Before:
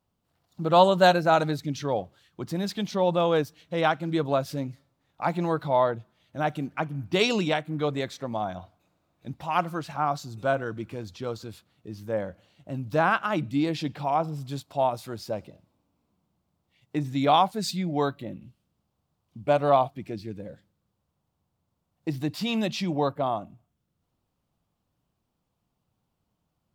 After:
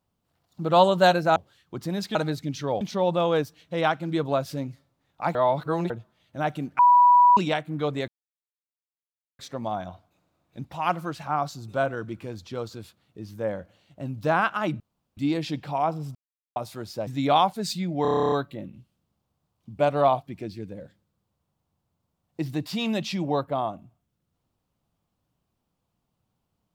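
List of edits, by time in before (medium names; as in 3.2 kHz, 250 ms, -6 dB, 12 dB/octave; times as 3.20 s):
1.36–2.02 s: move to 2.81 s
5.35–5.90 s: reverse
6.79–7.37 s: bleep 979 Hz -12 dBFS
8.08 s: insert silence 1.31 s
13.49 s: insert room tone 0.37 s
14.47–14.88 s: mute
15.39–17.05 s: delete
18.00 s: stutter 0.03 s, 11 plays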